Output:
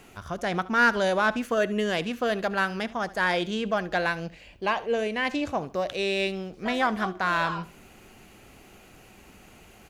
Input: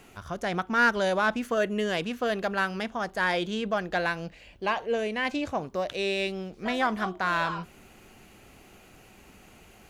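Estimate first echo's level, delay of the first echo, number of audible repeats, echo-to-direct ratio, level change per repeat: −19.0 dB, 72 ms, 2, −18.5 dB, −10.5 dB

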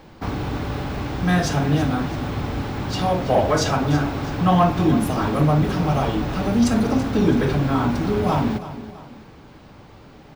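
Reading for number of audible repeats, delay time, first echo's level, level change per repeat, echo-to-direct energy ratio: 2, 330 ms, −14.0 dB, −7.0 dB, −13.0 dB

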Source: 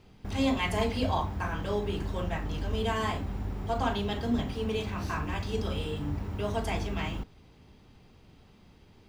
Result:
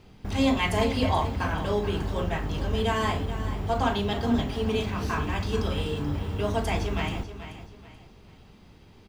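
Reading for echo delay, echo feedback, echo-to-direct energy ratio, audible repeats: 432 ms, 33%, −11.5 dB, 3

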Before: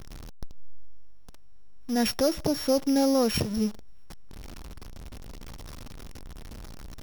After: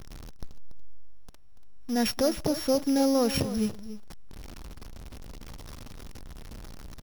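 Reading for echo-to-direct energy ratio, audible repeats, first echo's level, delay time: −13.5 dB, 1, −13.5 dB, 286 ms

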